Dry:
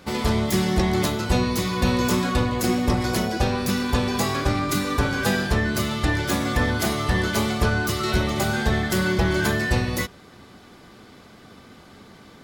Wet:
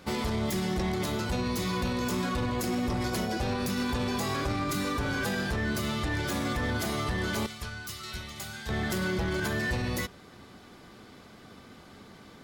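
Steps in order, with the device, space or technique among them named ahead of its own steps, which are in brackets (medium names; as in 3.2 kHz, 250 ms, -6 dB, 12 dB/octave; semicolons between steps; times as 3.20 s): 7.46–8.69 s: amplifier tone stack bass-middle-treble 5-5-5; limiter into clipper (peak limiter -17.5 dBFS, peak gain reduction 7.5 dB; hard clipper -20.5 dBFS, distortion -22 dB); trim -3.5 dB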